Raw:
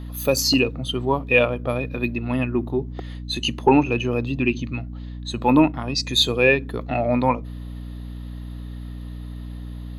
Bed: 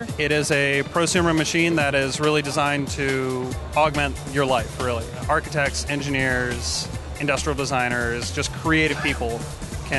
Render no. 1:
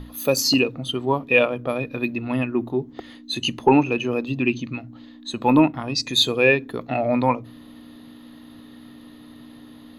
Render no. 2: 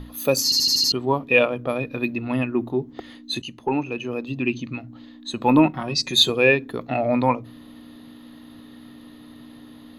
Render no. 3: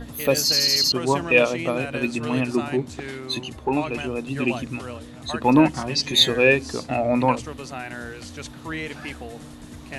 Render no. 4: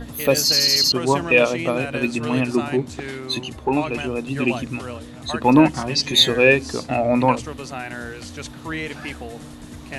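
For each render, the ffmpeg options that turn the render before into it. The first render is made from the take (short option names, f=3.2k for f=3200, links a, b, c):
-af "bandreject=f=60:t=h:w=6,bandreject=f=120:t=h:w=6,bandreject=f=180:t=h:w=6"
-filter_complex "[0:a]asettb=1/sr,asplit=3[a][b][c];[a]atrim=end=5.654[d];[b]atrim=start=5.65:end=6.3,asetpts=PTS-STARTPTS,afade=t=in:d=0.004:c=qsin,afade=t=out:st=0.646:d=0.004:c=qsin,aecho=1:1:5.4:0.65,atrim=end_sample=28665[e];[c]atrim=start=6.296[f];[d][e]acrossfade=d=0.004:c1=hsin:c2=qsin[g];[g][f]acrossfade=d=0.004:c1=qsin:c2=hsin,asplit=8[h][i][j][k][l][m][n][o];[h]atrim=end=0.522[p];[i]atrim=start=0.438:end=0.522[q];[j]atrim=start=0.438:end=0.522[r];[k]atrim=start=0.438:end=0.522[s];[l]atrim=start=0.438:end=0.522[t];[m]atrim=start=0.438:end=0.522[u];[n]atrim=start=0.918:end=3.42,asetpts=PTS-STARTPTS,afade=t=out:st=2.498:d=0.004:c=hsin:silence=0.237137[v];[o]atrim=start=3.42,asetpts=PTS-STARTPTS,afade=t=in:d=1.51:silence=0.237137[w];[p][q]acrossfade=d=0.004:c1=hsin:c2=hsin[x];[x][r]acrossfade=d=0.004:c1=hsin:c2=hsin[y];[y][s]acrossfade=d=0.004:c1=hsin:c2=hsin[z];[z][t]acrossfade=d=0.004:c1=hsin:c2=hsin[aa];[aa][u]acrossfade=d=0.004:c1=hsin:c2=hsin[ab];[v][w]concat=n=2:v=0:a=1[ac];[ab][ac]acrossfade=d=0.004:c1=hsin:c2=hsin"
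-filter_complex "[1:a]volume=-12dB[a];[0:a][a]amix=inputs=2:normalize=0"
-af "volume=2.5dB,alimiter=limit=-3dB:level=0:latency=1"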